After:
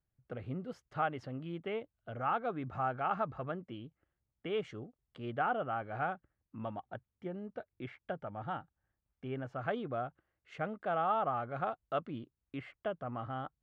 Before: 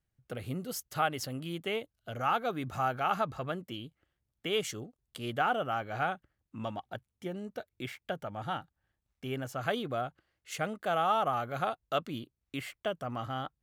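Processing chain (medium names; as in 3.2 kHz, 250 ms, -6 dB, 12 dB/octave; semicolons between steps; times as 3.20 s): low-pass 1.8 kHz 12 dB/octave; trim -3 dB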